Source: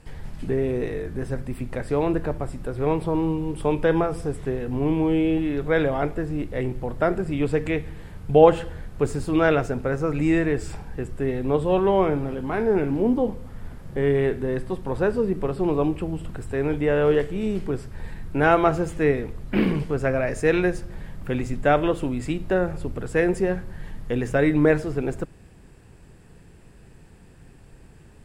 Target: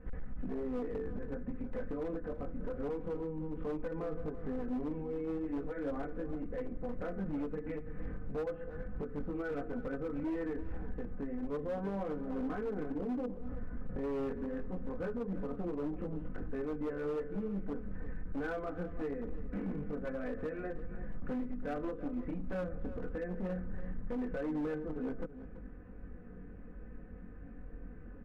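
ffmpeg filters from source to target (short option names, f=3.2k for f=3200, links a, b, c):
-filter_complex "[0:a]lowpass=f=1.6k:w=0.5412,lowpass=f=1.6k:w=1.3066,equalizer=f=880:t=o:w=0.44:g=-12.5,aecho=1:1:4:0.88,acompressor=threshold=-28dB:ratio=3,alimiter=level_in=2.5dB:limit=-24dB:level=0:latency=1:release=309,volume=-2.5dB,flanger=delay=19.5:depth=2.5:speed=0.24,asoftclip=type=hard:threshold=-34dB,asplit=2[a][b];[b]adelay=332.4,volume=-13dB,highshelf=f=4k:g=-7.48[c];[a][c]amix=inputs=2:normalize=0,volume=1.5dB"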